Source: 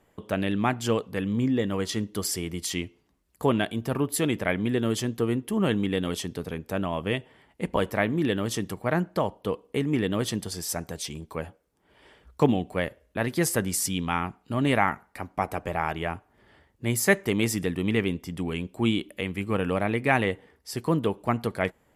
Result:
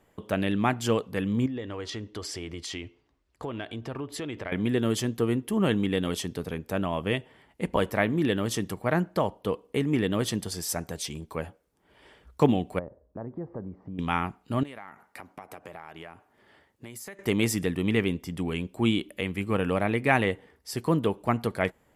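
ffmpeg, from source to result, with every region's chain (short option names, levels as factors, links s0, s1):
-filter_complex "[0:a]asettb=1/sr,asplit=3[s0][s1][s2];[s0]atrim=end=1.464[s3];[s1]atrim=start=1.46:end=4.52,asetpts=PTS-STARTPTS,afade=t=in:d=0.004:c=qsin,afade=t=out:st=3.056:d=0.004:c=qsin,lowpass=5100,equalizer=f=190:w=4.6:g=-13.5,acompressor=threshold=0.0251:ratio=4:attack=3.2:release=140:knee=1:detection=peak[s4];[s2]atrim=start=4.516[s5];[s3][s4]acrossfade=d=0.004:c1=hsin:c2=qsin[s6];[s6][s5]acrossfade=d=0.004:c1=qsin:c2=hsin,asettb=1/sr,asplit=3[s7][s8][s9];[s7]atrim=end=12.794[s10];[s8]atrim=start=12.79:end=13.99,asetpts=PTS-STARTPTS,afade=t=in:d=0.004:c=qsin,afade=t=out:st=1.196:d=0.004:c=qsin,lowpass=f=1000:w=0.5412,lowpass=f=1000:w=1.3066,acompressor=threshold=0.0141:ratio=2.5:attack=3.2:release=140:knee=1:detection=peak[s11];[s9]atrim=start=13.986[s12];[s10][s11]acrossfade=d=0.004:c1=hsin:c2=qsin[s13];[s13][s12]acrossfade=d=0.004:c1=qsin:c2=hsin,asettb=1/sr,asplit=3[s14][s15][s16];[s14]atrim=end=14.634[s17];[s15]atrim=start=14.63:end=17.19,asetpts=PTS-STARTPTS,afade=t=in:d=0.004:c=qsin,afade=t=out:st=2.556:d=0.004:c=qsin,highpass=f=240:p=1,acompressor=threshold=0.0126:ratio=10:attack=3.2:release=140:knee=1:detection=peak[s18];[s16]atrim=start=17.186[s19];[s17][s18]acrossfade=d=0.004:c1=hsin:c2=qsin[s20];[s20][s19]acrossfade=d=0.004:c1=qsin:c2=hsin"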